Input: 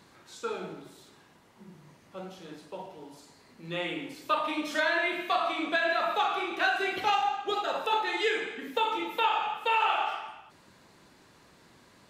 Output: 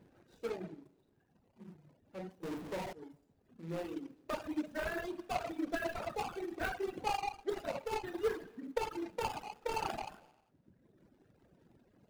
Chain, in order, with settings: median filter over 41 samples; reverb removal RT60 1.4 s; 2.43–2.93 s: power-law waveshaper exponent 0.35; trim -1 dB

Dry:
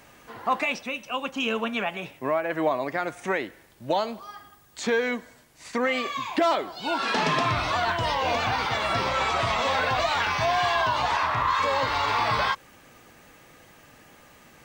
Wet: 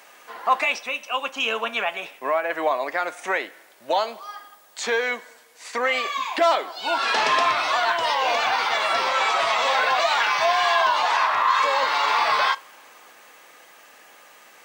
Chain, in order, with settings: high-pass 560 Hz 12 dB/octave; reverberation, pre-delay 3 ms, DRR 15.5 dB; trim +4.5 dB

